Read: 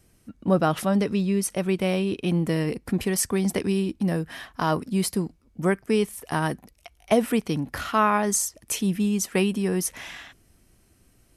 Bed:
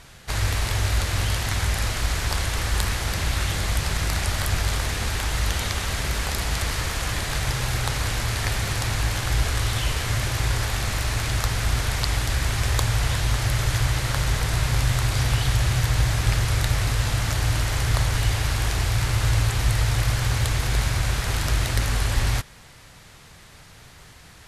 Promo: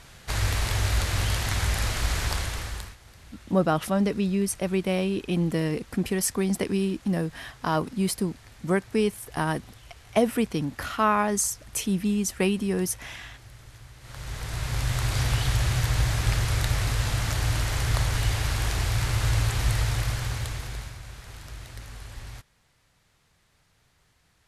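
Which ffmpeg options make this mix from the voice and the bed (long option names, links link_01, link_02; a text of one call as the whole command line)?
ffmpeg -i stem1.wav -i stem2.wav -filter_complex "[0:a]adelay=3050,volume=-1.5dB[link_01];[1:a]volume=20.5dB,afade=type=out:start_time=2.23:duration=0.73:silence=0.0668344,afade=type=in:start_time=13.99:duration=1.17:silence=0.0749894,afade=type=out:start_time=19.73:duration=1.25:silence=0.16788[link_02];[link_01][link_02]amix=inputs=2:normalize=0" out.wav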